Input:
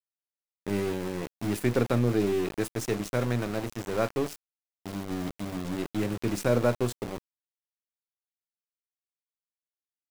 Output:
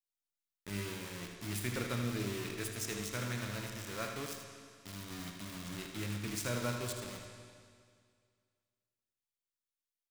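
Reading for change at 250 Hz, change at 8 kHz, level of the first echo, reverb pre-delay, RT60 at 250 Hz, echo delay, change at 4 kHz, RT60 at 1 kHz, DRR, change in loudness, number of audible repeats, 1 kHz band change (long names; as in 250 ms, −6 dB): −12.0 dB, −0.5 dB, −8.5 dB, 19 ms, 2.1 s, 79 ms, −1.0 dB, 2.1 s, 2.0 dB, −10.0 dB, 1, −9.0 dB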